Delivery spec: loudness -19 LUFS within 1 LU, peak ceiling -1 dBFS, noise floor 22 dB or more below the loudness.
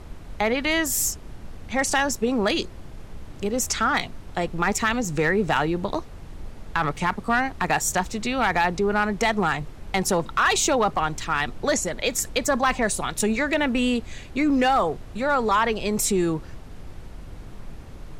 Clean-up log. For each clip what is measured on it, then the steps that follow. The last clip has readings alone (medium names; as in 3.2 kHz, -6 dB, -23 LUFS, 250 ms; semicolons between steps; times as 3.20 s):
clipped samples 0.2%; clipping level -12.5 dBFS; noise floor -41 dBFS; noise floor target -46 dBFS; loudness -23.5 LUFS; peak level -12.5 dBFS; loudness target -19.0 LUFS
-> clip repair -12.5 dBFS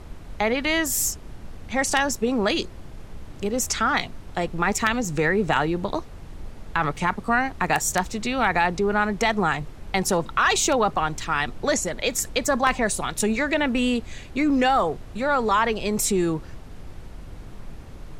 clipped samples 0.0%; noise floor -41 dBFS; noise floor target -46 dBFS
-> noise print and reduce 6 dB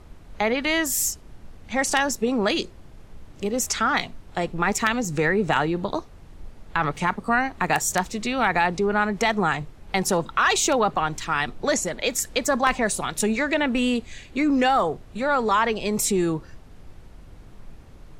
noise floor -46 dBFS; loudness -23.5 LUFS; peak level -3.5 dBFS; loudness target -19.0 LUFS
-> trim +4.5 dB; peak limiter -1 dBFS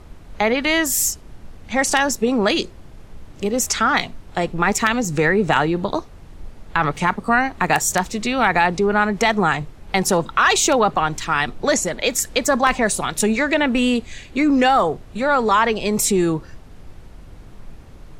loudness -19.0 LUFS; peak level -1.0 dBFS; noise floor -42 dBFS